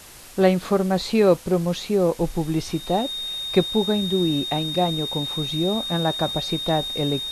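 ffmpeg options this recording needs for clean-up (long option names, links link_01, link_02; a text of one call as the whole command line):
ffmpeg -i in.wav -af "bandreject=frequency=3700:width=30,afwtdn=0.0071" out.wav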